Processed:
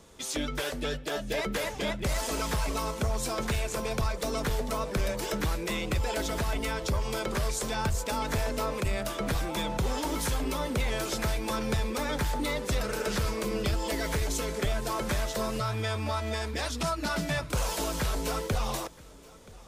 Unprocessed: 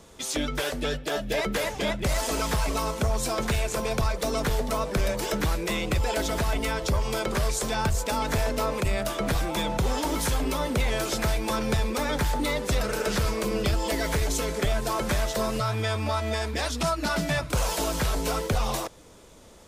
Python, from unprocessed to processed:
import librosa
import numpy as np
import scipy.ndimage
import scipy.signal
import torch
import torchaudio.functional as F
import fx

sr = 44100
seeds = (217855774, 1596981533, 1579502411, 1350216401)

p1 = fx.peak_eq(x, sr, hz=700.0, db=-2.0, octaves=0.34)
p2 = p1 + fx.echo_single(p1, sr, ms=977, db=-22.5, dry=0)
y = p2 * 10.0 ** (-3.5 / 20.0)